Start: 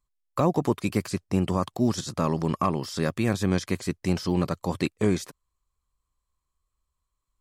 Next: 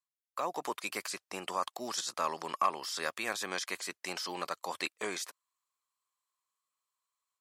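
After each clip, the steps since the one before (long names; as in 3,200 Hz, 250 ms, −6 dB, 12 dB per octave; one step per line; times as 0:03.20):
high-pass filter 860 Hz 12 dB per octave
automatic gain control gain up to 8 dB
level −8.5 dB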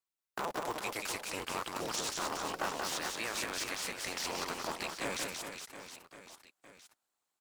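sub-harmonics by changed cycles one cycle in 3, inverted
brickwall limiter −25.5 dBFS, peak gain reduction 9 dB
reverse bouncing-ball delay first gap 180 ms, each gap 1.3×, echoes 5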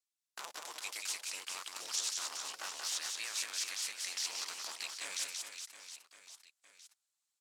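resonant band-pass 6,400 Hz, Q 0.77
level +3 dB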